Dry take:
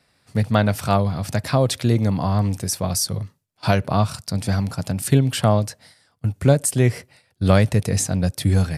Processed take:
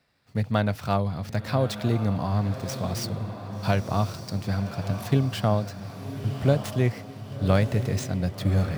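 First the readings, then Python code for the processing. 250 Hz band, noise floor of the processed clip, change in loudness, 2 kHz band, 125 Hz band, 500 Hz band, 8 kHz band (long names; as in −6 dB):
−5.5 dB, −43 dBFS, −6.0 dB, −5.5 dB, −5.5 dB, −5.5 dB, −15.0 dB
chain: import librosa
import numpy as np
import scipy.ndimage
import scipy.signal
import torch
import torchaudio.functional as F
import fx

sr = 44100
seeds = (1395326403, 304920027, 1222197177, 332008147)

y = scipy.signal.medfilt(x, 5)
y = fx.echo_diffused(y, sr, ms=1132, feedback_pct=52, wet_db=-9.5)
y = y * librosa.db_to_amplitude(-6.0)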